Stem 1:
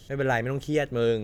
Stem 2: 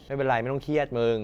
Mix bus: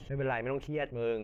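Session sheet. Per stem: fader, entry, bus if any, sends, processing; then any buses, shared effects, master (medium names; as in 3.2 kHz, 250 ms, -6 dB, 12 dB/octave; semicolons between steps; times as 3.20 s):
-11.0 dB, 0.00 s, no send, spectral gate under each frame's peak -25 dB strong; tone controls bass +14 dB, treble +5 dB; auto duck -12 dB, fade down 1.50 s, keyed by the second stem
-2.0 dB, 1.8 ms, polarity flipped, no send, resonant high shelf 3.4 kHz -7.5 dB, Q 3; attacks held to a fixed rise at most 120 dB/s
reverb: none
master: compression, threshold -29 dBFS, peak gain reduction 8.5 dB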